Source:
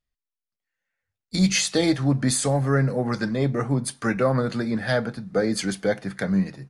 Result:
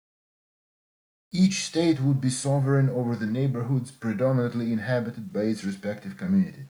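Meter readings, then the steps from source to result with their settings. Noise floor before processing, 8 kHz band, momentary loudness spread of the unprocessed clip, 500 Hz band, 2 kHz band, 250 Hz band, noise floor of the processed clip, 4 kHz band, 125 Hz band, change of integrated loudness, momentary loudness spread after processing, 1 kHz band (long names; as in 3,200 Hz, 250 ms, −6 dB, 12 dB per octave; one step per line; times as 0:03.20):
below −85 dBFS, −7.5 dB, 6 LU, −3.5 dB, −7.0 dB, −1.0 dB, below −85 dBFS, −7.0 dB, 0.0 dB, −2.5 dB, 9 LU, −6.5 dB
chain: harmonic and percussive parts rebalanced percussive −16 dB
bit-depth reduction 10 bits, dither none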